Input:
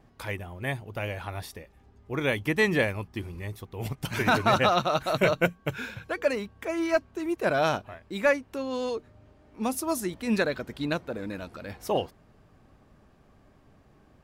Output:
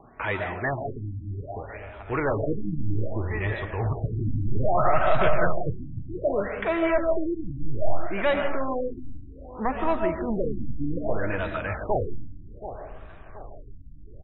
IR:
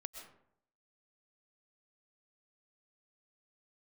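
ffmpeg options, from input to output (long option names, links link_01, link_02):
-filter_complex "[0:a]bandreject=frequency=520:width=12,acrossover=split=460|2000[link_01][link_02][link_03];[link_03]acompressor=threshold=-46dB:ratio=6[link_04];[link_01][link_02][link_04]amix=inputs=3:normalize=0,bass=frequency=250:gain=0,treble=frequency=4000:gain=-9,aecho=1:1:726|1452|2178:0.112|0.0426|0.0162,asoftclip=type=tanh:threshold=-23.5dB,asplit=2[link_05][link_06];[link_06]highpass=frequency=720:poles=1,volume=12dB,asoftclip=type=tanh:threshold=-23.5dB[link_07];[link_05][link_07]amix=inputs=2:normalize=0,lowpass=frequency=5900:poles=1,volume=-6dB,asubboost=boost=8.5:cutoff=75[link_08];[1:a]atrim=start_sample=2205[link_09];[link_08][link_09]afir=irnorm=-1:irlink=0,alimiter=level_in=20dB:limit=-1dB:release=50:level=0:latency=1,afftfilt=real='re*lt(b*sr/1024,300*pow(4000/300,0.5+0.5*sin(2*PI*0.63*pts/sr)))':imag='im*lt(b*sr/1024,300*pow(4000/300,0.5+0.5*sin(2*PI*0.63*pts/sr)))':win_size=1024:overlap=0.75,volume=-8.5dB"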